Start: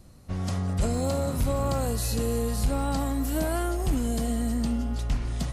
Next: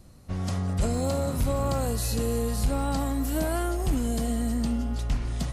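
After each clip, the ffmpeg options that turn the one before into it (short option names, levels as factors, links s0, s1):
-af anull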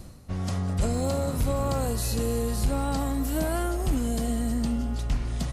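-filter_complex "[0:a]areverse,acompressor=mode=upward:threshold=0.0355:ratio=2.5,areverse,asplit=6[s0][s1][s2][s3][s4][s5];[s1]adelay=200,afreqshift=-98,volume=0.112[s6];[s2]adelay=400,afreqshift=-196,volume=0.0631[s7];[s3]adelay=600,afreqshift=-294,volume=0.0351[s8];[s4]adelay=800,afreqshift=-392,volume=0.0197[s9];[s5]adelay=1000,afreqshift=-490,volume=0.0111[s10];[s0][s6][s7][s8][s9][s10]amix=inputs=6:normalize=0"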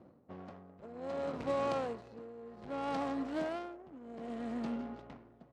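-af "tremolo=f=0.64:d=0.82,adynamicsmooth=sensitivity=5.5:basefreq=550,highpass=320,lowpass=7800,volume=0.75"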